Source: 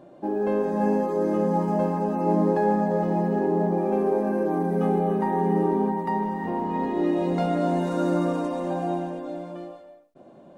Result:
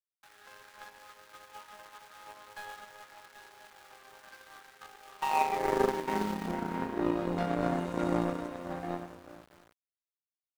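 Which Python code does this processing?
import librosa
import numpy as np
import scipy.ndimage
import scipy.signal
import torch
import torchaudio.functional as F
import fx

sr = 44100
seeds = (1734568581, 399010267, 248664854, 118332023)

y = np.where(np.abs(x) >= 10.0 ** (-32.0 / 20.0), x, 0.0)
y = fx.filter_sweep_highpass(y, sr, from_hz=1400.0, to_hz=65.0, start_s=5.05, end_s=7.14, q=2.4)
y = fx.power_curve(y, sr, exponent=2.0)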